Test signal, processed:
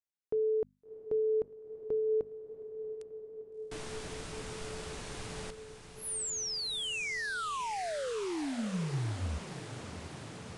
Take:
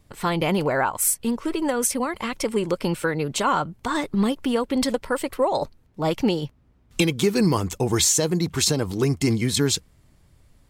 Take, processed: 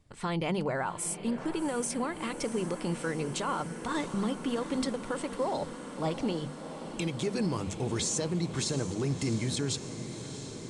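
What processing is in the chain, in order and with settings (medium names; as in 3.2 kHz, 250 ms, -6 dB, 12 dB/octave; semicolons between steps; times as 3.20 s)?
peaking EQ 140 Hz +3.5 dB 1.5 oct; hum notches 50/100/150/200/250 Hz; peak limiter -14.5 dBFS; on a send: echo that smears into a reverb 692 ms, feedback 79%, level -12 dB; on the sum: resampled via 22.05 kHz; trim -8 dB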